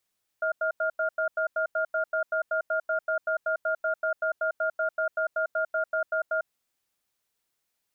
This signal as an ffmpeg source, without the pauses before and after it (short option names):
-f lavfi -i "aevalsrc='0.0473*(sin(2*PI*638*t)+sin(2*PI*1410*t))*clip(min(mod(t,0.19),0.1-mod(t,0.19))/0.005,0,1)':d=5.99:s=44100"